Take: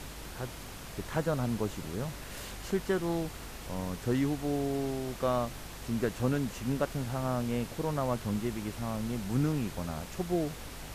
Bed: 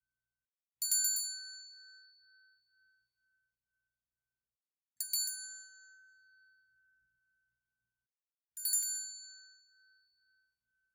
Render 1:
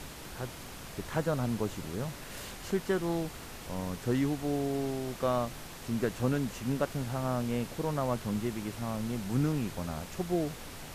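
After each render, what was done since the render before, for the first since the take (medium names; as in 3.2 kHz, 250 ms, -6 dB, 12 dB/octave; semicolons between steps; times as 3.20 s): de-hum 50 Hz, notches 2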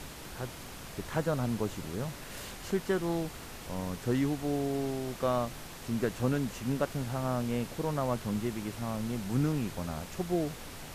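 no audible change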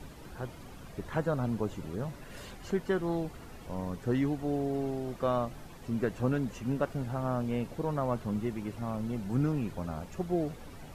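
noise reduction 11 dB, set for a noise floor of -45 dBFS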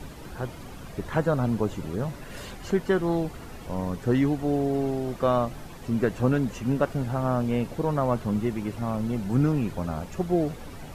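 trim +6.5 dB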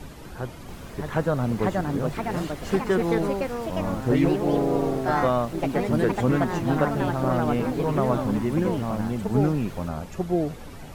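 ever faster or slower copies 681 ms, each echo +3 st, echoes 3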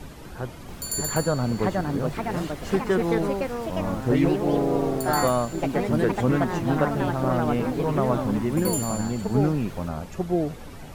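add bed +1.5 dB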